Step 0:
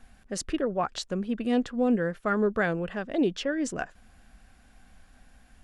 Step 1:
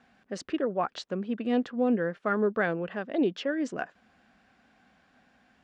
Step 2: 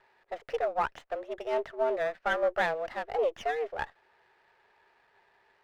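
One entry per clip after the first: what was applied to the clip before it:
HPF 190 Hz 12 dB/oct; air absorption 140 m
mistuned SSB +150 Hz 300–2800 Hz; running maximum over 5 samples

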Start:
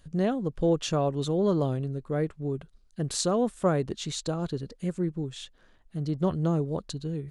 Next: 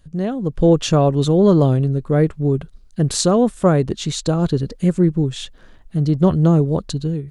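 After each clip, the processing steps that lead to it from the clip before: low shelf 280 Hz +5.5 dB; AGC gain up to 11 dB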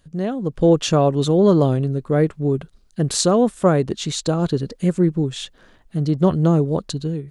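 low shelf 100 Hz -10.5 dB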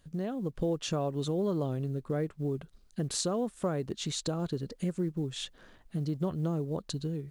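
compressor 2.5:1, threshold -28 dBFS, peak gain reduction 12.5 dB; companded quantiser 8-bit; gain -5 dB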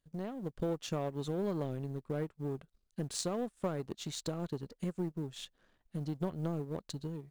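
power-law curve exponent 1.4

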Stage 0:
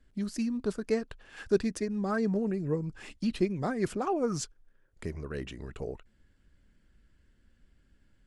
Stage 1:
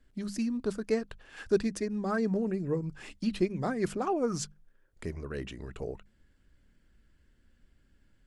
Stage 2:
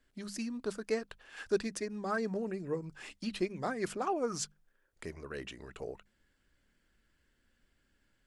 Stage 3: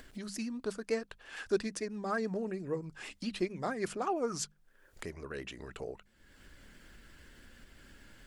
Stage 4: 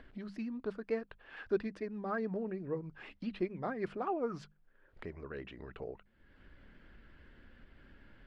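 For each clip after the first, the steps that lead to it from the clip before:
notches 50/100/150/200 Hz
low shelf 310 Hz -11.5 dB
vibrato 8.9 Hz 44 cents; upward compressor, threshold -39 dBFS
air absorption 380 m; gain -1 dB

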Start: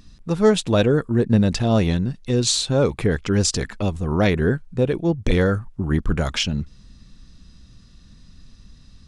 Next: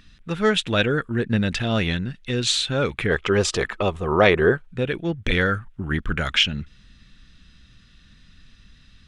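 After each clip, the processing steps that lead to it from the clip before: spectral gain 3.1–4.67, 330–1300 Hz +10 dB; band shelf 2200 Hz +11.5 dB; gain -5 dB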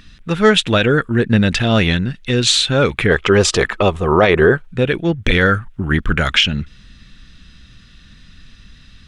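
maximiser +9 dB; gain -1 dB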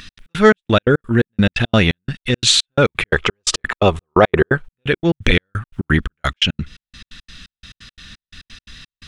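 step gate "x.x.xx.." 173 bpm -60 dB; mismatched tape noise reduction encoder only; gain +1 dB

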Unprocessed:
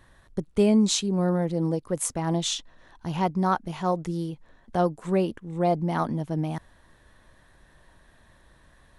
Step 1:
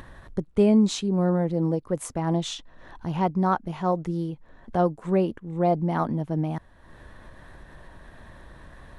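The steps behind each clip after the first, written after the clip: high shelf 3100 Hz -11 dB; upward compressor, threshold -36 dBFS; gain +1.5 dB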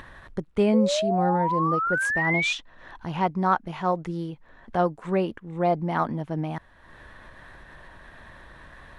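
bell 2000 Hz +8.5 dB 2.8 oct; painted sound rise, 0.73–2.53, 490–2500 Hz -22 dBFS; gain -3.5 dB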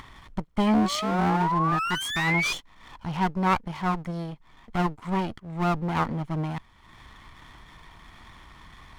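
minimum comb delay 0.92 ms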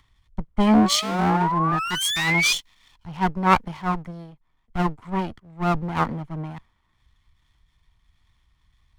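three-band expander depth 100%; gain +1.5 dB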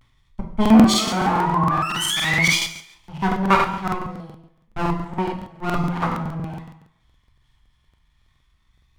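vibrato 0.36 Hz 52 cents; plate-style reverb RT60 0.72 s, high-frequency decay 0.9×, DRR 0 dB; crackling interface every 0.14 s, samples 2048, repeat, from 0.61; gain -1 dB

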